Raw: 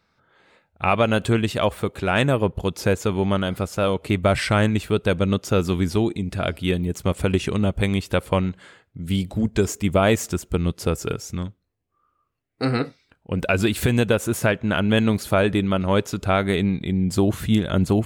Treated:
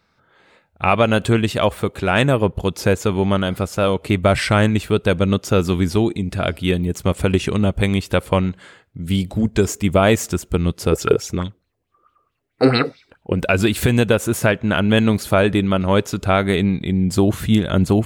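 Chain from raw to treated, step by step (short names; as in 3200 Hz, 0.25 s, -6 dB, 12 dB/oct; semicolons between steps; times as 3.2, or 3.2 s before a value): 10.92–13.33 LFO bell 4.6 Hz 350–3800 Hz +14 dB; gain +3.5 dB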